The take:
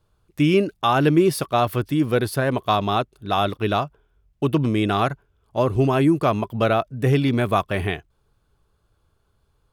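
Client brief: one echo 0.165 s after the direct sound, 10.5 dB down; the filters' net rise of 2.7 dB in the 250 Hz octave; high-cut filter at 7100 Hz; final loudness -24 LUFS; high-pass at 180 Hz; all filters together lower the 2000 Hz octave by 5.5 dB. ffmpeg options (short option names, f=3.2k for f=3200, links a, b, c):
-af "highpass=180,lowpass=7.1k,equalizer=f=250:t=o:g=5,equalizer=f=2k:t=o:g=-8,aecho=1:1:165:0.299,volume=-3.5dB"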